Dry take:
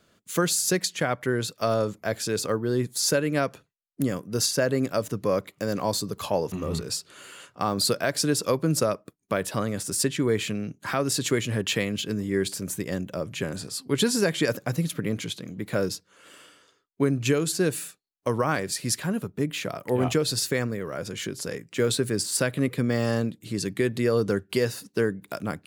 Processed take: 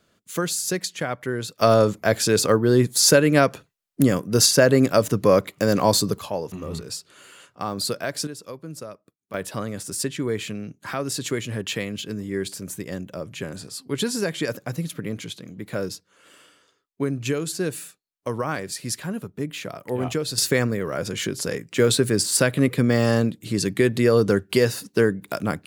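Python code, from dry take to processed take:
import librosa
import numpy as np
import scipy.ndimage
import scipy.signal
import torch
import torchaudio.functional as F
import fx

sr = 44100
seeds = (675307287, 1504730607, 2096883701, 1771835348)

y = fx.gain(x, sr, db=fx.steps((0.0, -1.5), (1.59, 8.0), (6.19, -2.5), (8.27, -13.0), (9.34, -2.0), (20.38, 5.5)))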